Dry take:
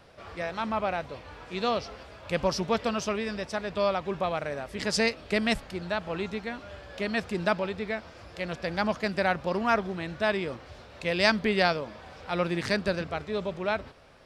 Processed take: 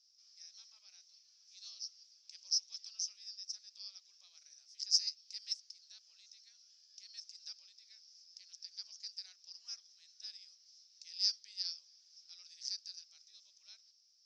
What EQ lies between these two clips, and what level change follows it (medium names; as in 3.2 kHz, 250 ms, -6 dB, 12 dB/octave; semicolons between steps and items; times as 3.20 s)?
Butterworth band-pass 5.5 kHz, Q 4.9; +4.5 dB